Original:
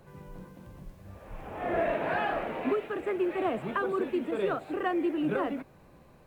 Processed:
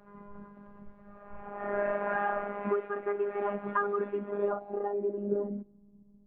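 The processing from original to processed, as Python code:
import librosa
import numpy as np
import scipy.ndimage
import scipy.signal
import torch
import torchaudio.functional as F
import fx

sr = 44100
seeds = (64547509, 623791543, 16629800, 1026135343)

y = fx.filter_sweep_lowpass(x, sr, from_hz=1400.0, to_hz=220.0, start_s=4.09, end_s=5.97, q=1.8)
y = fx.robotise(y, sr, hz=203.0)
y = y * 10.0 ** (-1.0 / 20.0)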